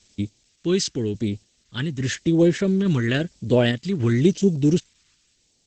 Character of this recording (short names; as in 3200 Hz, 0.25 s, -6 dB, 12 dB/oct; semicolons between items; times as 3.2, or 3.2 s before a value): a quantiser's noise floor 10-bit, dither triangular; phasing stages 2, 0.94 Hz, lowest notch 630–1300 Hz; random-step tremolo; Opus